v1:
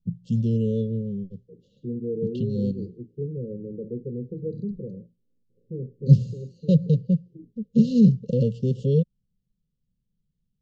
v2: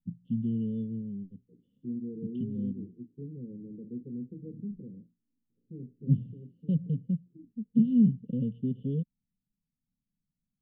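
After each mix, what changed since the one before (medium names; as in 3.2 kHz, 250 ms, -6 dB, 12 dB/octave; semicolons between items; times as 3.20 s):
master: add cascade formant filter i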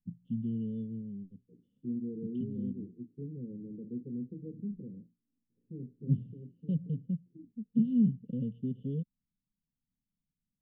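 first voice -4.0 dB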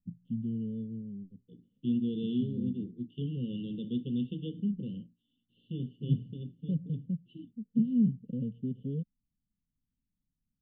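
second voice: remove four-pole ladder low-pass 550 Hz, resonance 40%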